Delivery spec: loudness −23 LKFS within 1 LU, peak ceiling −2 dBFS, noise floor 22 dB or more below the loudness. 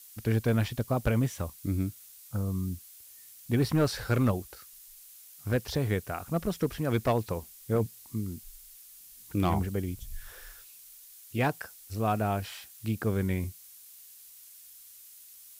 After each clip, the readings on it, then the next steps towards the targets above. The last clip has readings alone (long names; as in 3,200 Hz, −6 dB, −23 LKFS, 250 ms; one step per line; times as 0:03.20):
share of clipped samples 0.3%; peaks flattened at −18.5 dBFS; background noise floor −52 dBFS; target noise floor −53 dBFS; integrated loudness −31.0 LKFS; sample peak −18.5 dBFS; target loudness −23.0 LKFS
→ clipped peaks rebuilt −18.5 dBFS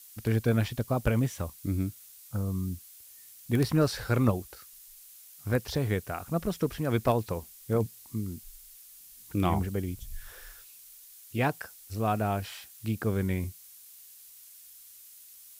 share of clipped samples 0.0%; background noise floor −52 dBFS; target noise floor −53 dBFS
→ broadband denoise 6 dB, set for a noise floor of −52 dBFS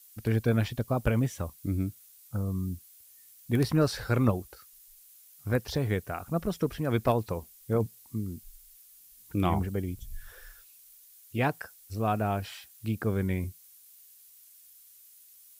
background noise floor −56 dBFS; integrated loudness −30.5 LKFS; sample peak −10.0 dBFS; target loudness −23.0 LKFS
→ level +7.5 dB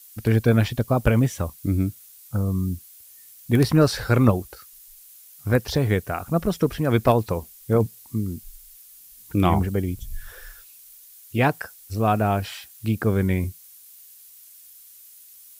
integrated loudness −23.0 LKFS; sample peak −2.5 dBFS; background noise floor −48 dBFS